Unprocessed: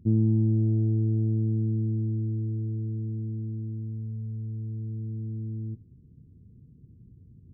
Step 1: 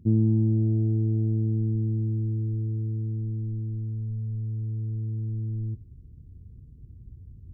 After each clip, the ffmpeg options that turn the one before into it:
-af "asubboost=boost=7:cutoff=65,volume=1.5dB"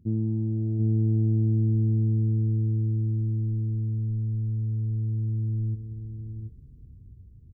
-af "dynaudnorm=f=100:g=17:m=5dB,aecho=1:1:737:0.501,volume=-5.5dB"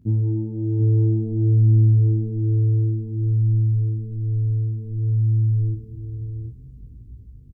-filter_complex "[0:a]flanger=delay=19:depth=6.2:speed=0.56,asplit=2[a][b];[b]adelay=16,volume=-4dB[c];[a][c]amix=inputs=2:normalize=0,volume=8dB"

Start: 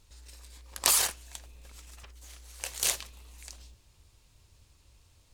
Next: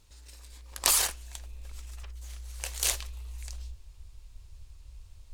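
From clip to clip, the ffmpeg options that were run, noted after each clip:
-af "asubboost=boost=12:cutoff=52"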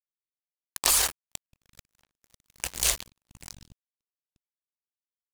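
-filter_complex "[0:a]asplit=2[a][b];[b]alimiter=limit=-11.5dB:level=0:latency=1:release=450,volume=2.5dB[c];[a][c]amix=inputs=2:normalize=0,acrusher=bits=3:mix=0:aa=0.5,volume=-2.5dB"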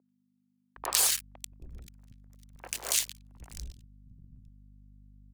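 -filter_complex "[0:a]aeval=exprs='val(0)+0.00282*(sin(2*PI*50*n/s)+sin(2*PI*2*50*n/s)/2+sin(2*PI*3*50*n/s)/3+sin(2*PI*4*50*n/s)/4+sin(2*PI*5*50*n/s)/5)':c=same,acrossover=split=250|1700[a][b][c];[c]adelay=90[d];[a]adelay=760[e];[e][b][d]amix=inputs=3:normalize=0,volume=-2.5dB"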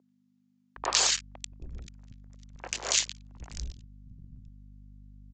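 -af "aresample=16000,aresample=44100,volume=4.5dB"

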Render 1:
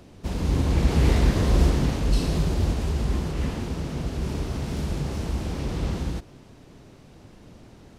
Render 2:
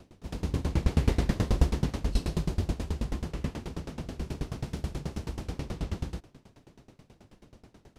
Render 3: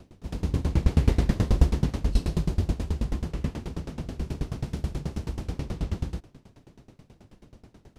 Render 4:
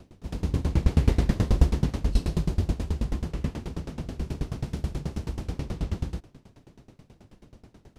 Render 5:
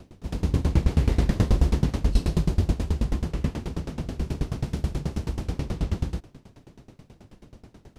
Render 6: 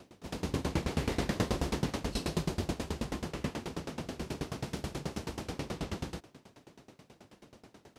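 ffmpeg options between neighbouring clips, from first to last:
-af "aeval=exprs='val(0)*pow(10,-23*if(lt(mod(9.3*n/s,1),2*abs(9.3)/1000),1-mod(9.3*n/s,1)/(2*abs(9.3)/1000),(mod(9.3*n/s,1)-2*abs(9.3)/1000)/(1-2*abs(9.3)/1000))/20)':c=same"
-af "lowshelf=f=290:g=4.5"
-af anull
-af "alimiter=level_in=11dB:limit=-1dB:release=50:level=0:latency=1,volume=-8dB"
-af "highpass=f=430:p=1"

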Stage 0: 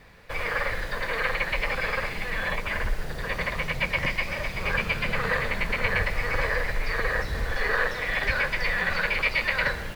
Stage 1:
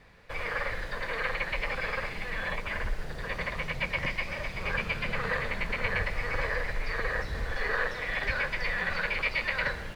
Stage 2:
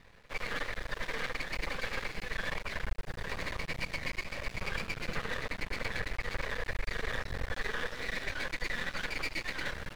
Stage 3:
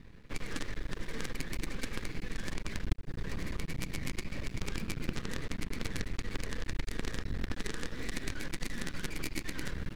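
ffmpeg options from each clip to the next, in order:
-af "highshelf=f=12k:g=-11.5,volume=-4.5dB"
-af "aeval=exprs='max(val(0),0)':c=same,alimiter=limit=-22.5dB:level=0:latency=1:release=256,volume=1dB"
-af "aeval=exprs='0.0891*(cos(1*acos(clip(val(0)/0.0891,-1,1)))-cos(1*PI/2))+0.0251*(cos(3*acos(clip(val(0)/0.0891,-1,1)))-cos(3*PI/2))+0.0251*(cos(4*acos(clip(val(0)/0.0891,-1,1)))-cos(4*PI/2))+0.002*(cos(5*acos(clip(val(0)/0.0891,-1,1)))-cos(5*PI/2))+0.0126*(cos(6*acos(clip(val(0)/0.0891,-1,1)))-cos(6*PI/2))':c=same,lowshelf=f=430:t=q:w=1.5:g=10.5,acompressor=threshold=-41dB:ratio=2,volume=8.5dB"

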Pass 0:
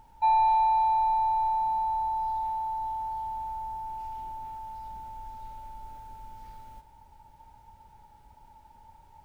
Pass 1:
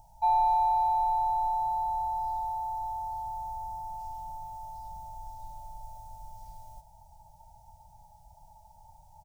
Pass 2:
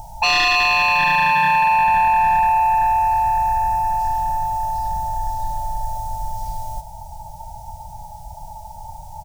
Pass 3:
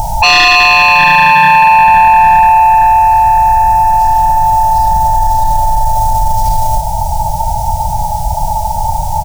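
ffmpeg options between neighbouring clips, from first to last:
-af "firequalizer=gain_entry='entry(170,0);entry(270,-27);entry(410,-25);entry(660,9);entry(1200,-21);entry(5700,4)':delay=0.05:min_phase=1,volume=1dB"
-af "aeval=exprs='0.141*sin(PI/2*3.98*val(0)/0.141)':c=same,volume=4dB"
-af "alimiter=level_in=23.5dB:limit=-1dB:release=50:level=0:latency=1,volume=-2dB"

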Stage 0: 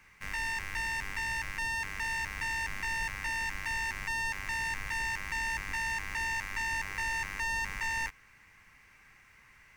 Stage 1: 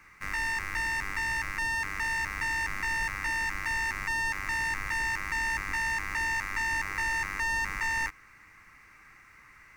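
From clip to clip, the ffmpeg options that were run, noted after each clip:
-af "equalizer=f=315:t=o:w=0.33:g=7,equalizer=f=1.25k:t=o:w=0.33:g=9,equalizer=f=2k:t=o:w=0.33:g=3,equalizer=f=3.15k:t=o:w=0.33:g=-7,volume=2dB"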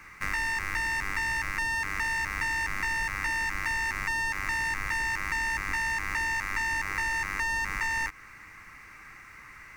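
-af "acompressor=threshold=-33dB:ratio=6,volume=6.5dB"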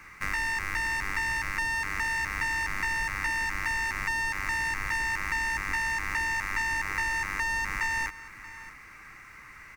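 -af "aecho=1:1:631:0.141"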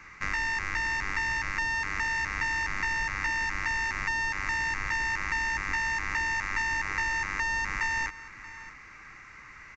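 -af "aresample=16000,aresample=44100"

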